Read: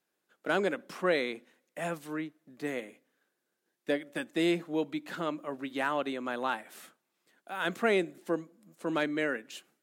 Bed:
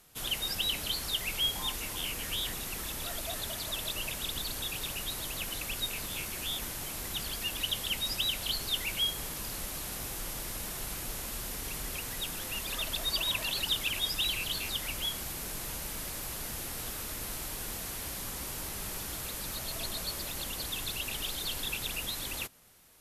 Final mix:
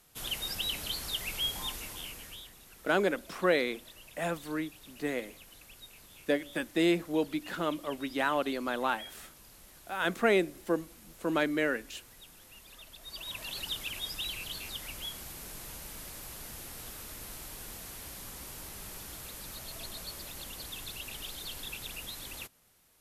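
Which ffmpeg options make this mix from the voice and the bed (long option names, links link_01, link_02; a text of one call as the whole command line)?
ffmpeg -i stem1.wav -i stem2.wav -filter_complex "[0:a]adelay=2400,volume=1.5dB[link_01];[1:a]volume=8.5dB,afade=type=out:start_time=1.62:duration=0.88:silence=0.188365,afade=type=in:start_time=13:duration=0.57:silence=0.281838[link_02];[link_01][link_02]amix=inputs=2:normalize=0" out.wav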